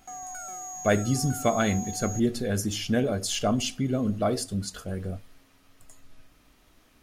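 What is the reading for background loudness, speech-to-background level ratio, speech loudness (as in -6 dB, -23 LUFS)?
-36.5 LUFS, 9.0 dB, -27.5 LUFS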